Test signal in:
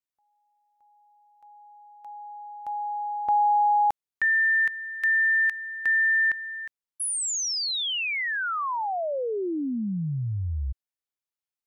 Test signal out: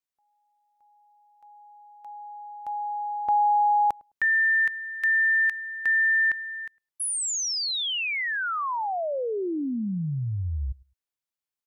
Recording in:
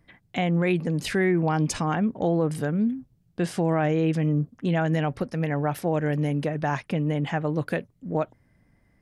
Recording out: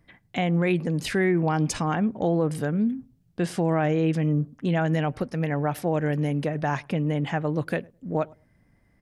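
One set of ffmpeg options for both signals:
-filter_complex "[0:a]asplit=2[a][b];[b]adelay=105,lowpass=f=870:p=1,volume=-24dB,asplit=2[c][d];[d]adelay=105,lowpass=f=870:p=1,volume=0.19[e];[a][c][e]amix=inputs=3:normalize=0"

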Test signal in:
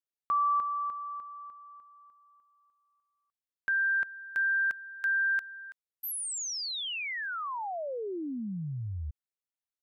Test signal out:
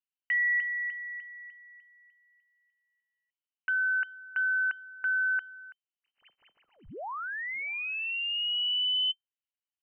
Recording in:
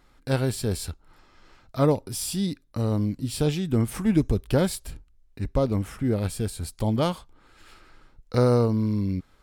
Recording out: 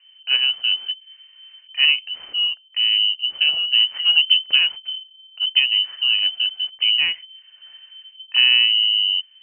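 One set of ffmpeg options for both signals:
-af "adynamicsmooth=sensitivity=7.5:basefreq=1.3k,lowshelf=f=240:g=9,lowpass=f=2.6k:t=q:w=0.5098,lowpass=f=2.6k:t=q:w=0.6013,lowpass=f=2.6k:t=q:w=0.9,lowpass=f=2.6k:t=q:w=2.563,afreqshift=-3100"

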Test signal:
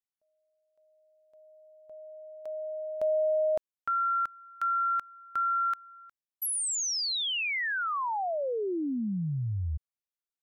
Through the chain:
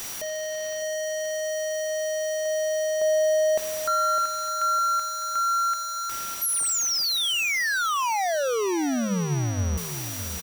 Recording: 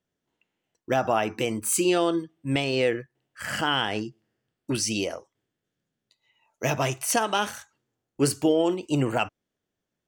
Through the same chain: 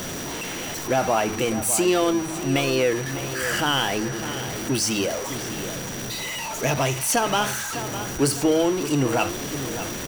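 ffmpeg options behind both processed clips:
-filter_complex "[0:a]aeval=exprs='val(0)+0.5*0.0562*sgn(val(0))':c=same,bandreject=f=52.93:t=h:w=4,bandreject=f=105.86:t=h:w=4,bandreject=f=158.79:t=h:w=4,bandreject=f=211.72:t=h:w=4,aeval=exprs='val(0)+0.0126*sin(2*PI*5800*n/s)':c=same,asplit=2[a][b];[b]adelay=606,lowpass=f=3.9k:p=1,volume=-11dB,asplit=2[c][d];[d]adelay=606,lowpass=f=3.9k:p=1,volume=0.4,asplit=2[e][f];[f]adelay=606,lowpass=f=3.9k:p=1,volume=0.4,asplit=2[g][h];[h]adelay=606,lowpass=f=3.9k:p=1,volume=0.4[i];[a][c][e][g][i]amix=inputs=5:normalize=0"

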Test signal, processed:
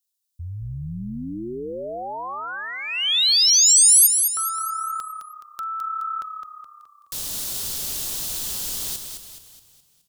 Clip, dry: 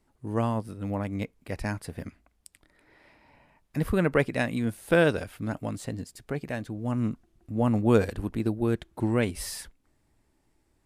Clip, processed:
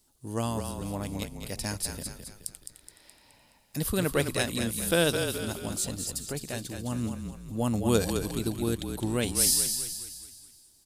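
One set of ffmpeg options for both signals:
-filter_complex "[0:a]aexciter=amount=4.5:drive=7.5:freq=3.1k,asplit=7[a][b][c][d][e][f][g];[b]adelay=211,afreqshift=-34,volume=-6.5dB[h];[c]adelay=422,afreqshift=-68,volume=-13.1dB[i];[d]adelay=633,afreqshift=-102,volume=-19.6dB[j];[e]adelay=844,afreqshift=-136,volume=-26.2dB[k];[f]adelay=1055,afreqshift=-170,volume=-32.7dB[l];[g]adelay=1266,afreqshift=-204,volume=-39.3dB[m];[a][h][i][j][k][l][m]amix=inputs=7:normalize=0,volume=-4dB"

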